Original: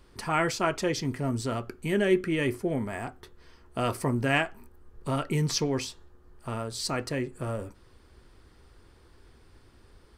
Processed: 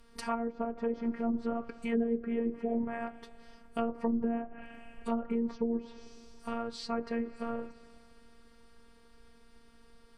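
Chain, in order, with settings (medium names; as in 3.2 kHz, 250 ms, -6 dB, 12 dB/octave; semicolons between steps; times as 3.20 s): on a send at -19 dB: reverberation RT60 2.9 s, pre-delay 68 ms; on the sum: robot voice 232 Hz; low-pass that closes with the level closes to 430 Hz, closed at -25 dBFS; short-mantissa float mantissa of 8-bit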